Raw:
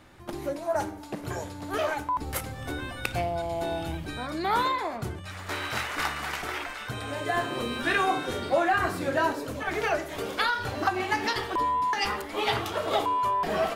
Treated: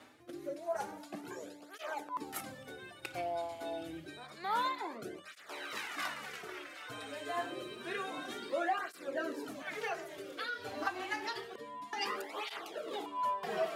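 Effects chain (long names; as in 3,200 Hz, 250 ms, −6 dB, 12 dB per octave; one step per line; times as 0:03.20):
high-pass filter 260 Hz 12 dB per octave
reversed playback
upward compression, threshold −29 dBFS
reversed playback
rotating-speaker cabinet horn 0.8 Hz
through-zero flanger with one copy inverted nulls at 0.28 Hz, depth 5.9 ms
level −5 dB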